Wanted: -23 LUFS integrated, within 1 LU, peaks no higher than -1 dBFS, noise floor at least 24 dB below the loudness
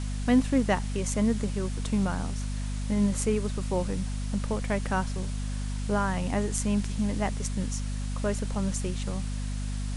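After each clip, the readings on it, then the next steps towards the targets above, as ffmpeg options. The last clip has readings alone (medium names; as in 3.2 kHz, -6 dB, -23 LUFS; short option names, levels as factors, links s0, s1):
hum 50 Hz; highest harmonic 250 Hz; hum level -29 dBFS; noise floor -32 dBFS; noise floor target -54 dBFS; loudness -29.5 LUFS; peak level -11.5 dBFS; loudness target -23.0 LUFS
-> -af "bandreject=f=50:t=h:w=4,bandreject=f=100:t=h:w=4,bandreject=f=150:t=h:w=4,bandreject=f=200:t=h:w=4,bandreject=f=250:t=h:w=4"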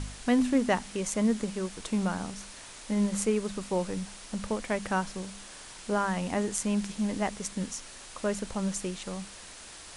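hum not found; noise floor -47 dBFS; noise floor target -55 dBFS
-> -af "afftdn=nr=8:nf=-47"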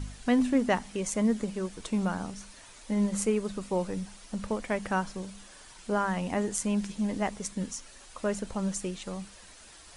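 noise floor -51 dBFS; noise floor target -55 dBFS
-> -af "afftdn=nr=6:nf=-51"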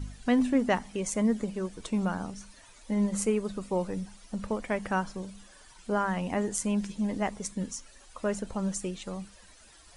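noise floor -55 dBFS; loudness -31.0 LUFS; peak level -13.0 dBFS; loudness target -23.0 LUFS
-> -af "volume=2.51"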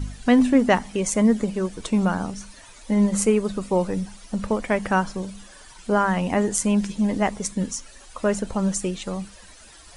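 loudness -23.0 LUFS; peak level -5.0 dBFS; noise floor -47 dBFS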